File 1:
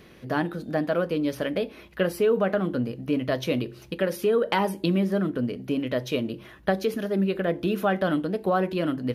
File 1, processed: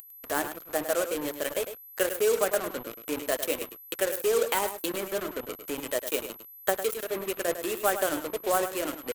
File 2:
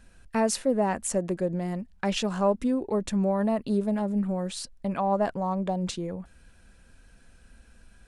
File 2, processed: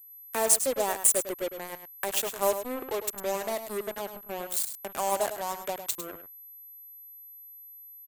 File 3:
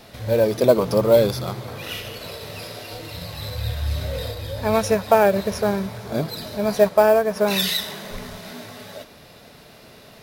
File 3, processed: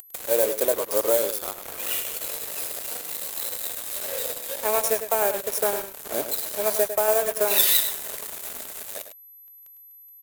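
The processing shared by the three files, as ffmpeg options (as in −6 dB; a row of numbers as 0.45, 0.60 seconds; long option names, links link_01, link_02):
-af "agate=range=-11dB:threshold=-42dB:ratio=16:detection=peak,highpass=frequency=340:width=0.5412,highpass=frequency=340:width=1.3066,acompressor=mode=upward:threshold=-30dB:ratio=2.5,alimiter=limit=-12dB:level=0:latency=1:release=448,acrusher=bits=4:mix=0:aa=0.5,aexciter=amount=4.1:drive=5.6:freq=7000,aeval=exprs='val(0)+0.00631*sin(2*PI*12000*n/s)':channel_layout=same,aeval=exprs='0.596*(cos(1*acos(clip(val(0)/0.596,-1,1)))-cos(1*PI/2))+0.0299*(cos(7*acos(clip(val(0)/0.596,-1,1)))-cos(7*PI/2))':channel_layout=same,aecho=1:1:103:0.316"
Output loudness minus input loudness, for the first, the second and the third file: −3.0, −1.0, −3.0 LU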